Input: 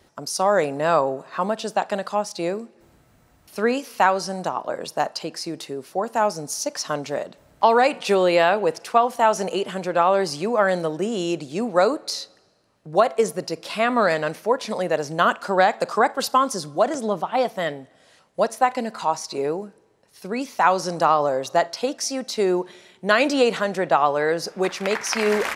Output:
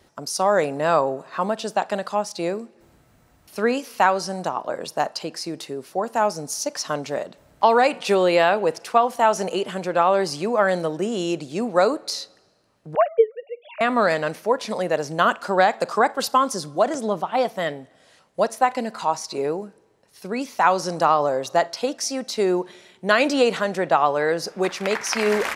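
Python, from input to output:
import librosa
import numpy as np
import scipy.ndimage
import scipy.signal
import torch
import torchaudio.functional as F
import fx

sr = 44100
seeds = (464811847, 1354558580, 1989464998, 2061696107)

y = fx.sine_speech(x, sr, at=(12.95, 13.81))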